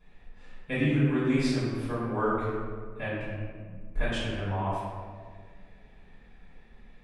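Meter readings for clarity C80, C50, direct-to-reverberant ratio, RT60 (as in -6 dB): 0.5 dB, -2.0 dB, -13.5 dB, 1.8 s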